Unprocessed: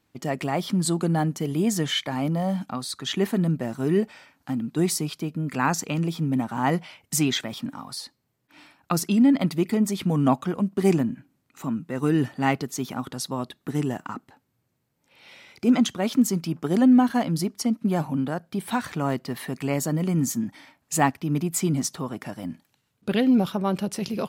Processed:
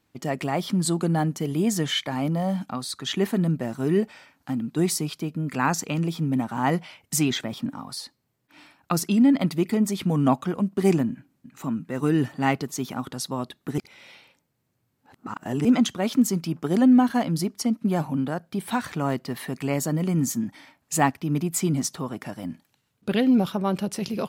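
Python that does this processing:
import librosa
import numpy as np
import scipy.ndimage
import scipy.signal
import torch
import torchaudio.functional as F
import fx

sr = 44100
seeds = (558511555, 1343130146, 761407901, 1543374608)

y = fx.tilt_shelf(x, sr, db=3.0, hz=970.0, at=(7.3, 7.9))
y = fx.echo_throw(y, sr, start_s=11.09, length_s=0.57, ms=350, feedback_pct=50, wet_db=-12.5)
y = fx.edit(y, sr, fx.reverse_span(start_s=13.78, length_s=1.87), tone=tone)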